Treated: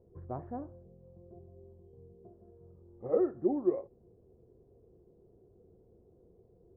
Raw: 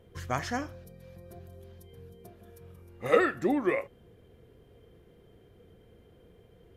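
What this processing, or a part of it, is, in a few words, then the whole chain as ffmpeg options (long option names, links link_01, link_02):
under water: -filter_complex "[0:a]asettb=1/sr,asplit=3[link_01][link_02][link_03];[link_01]atrim=end=0.834[link_04];[link_02]atrim=start=0.83:end=2.17,asetpts=PTS-STARTPTS,afade=type=in:duration=0.004:curve=qsin,afade=type=out:start_time=1.336:duration=0.004:curve=qsin,highshelf=frequency=2600:width_type=q:width=3:gain=9.5[link_05];[link_03]atrim=start=2.166[link_06];[link_04][link_05]acrossfade=duration=0.004:curve1=hsin:curve2=qsin[link_07];[link_07][link_06]acrossfade=duration=0.004:curve1=qsin:curve2=hsin,lowpass=frequency=840:width=0.5412,lowpass=frequency=840:width=1.3066,equalizer=frequency=370:width_type=o:width=0.28:gain=8,volume=-6.5dB"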